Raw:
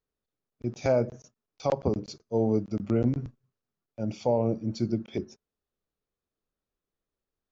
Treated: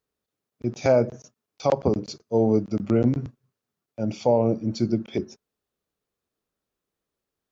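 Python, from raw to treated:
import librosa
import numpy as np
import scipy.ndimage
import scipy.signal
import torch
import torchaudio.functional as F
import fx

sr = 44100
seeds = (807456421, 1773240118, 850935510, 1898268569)

y = fx.highpass(x, sr, hz=97.0, slope=6)
y = y * librosa.db_to_amplitude(5.5)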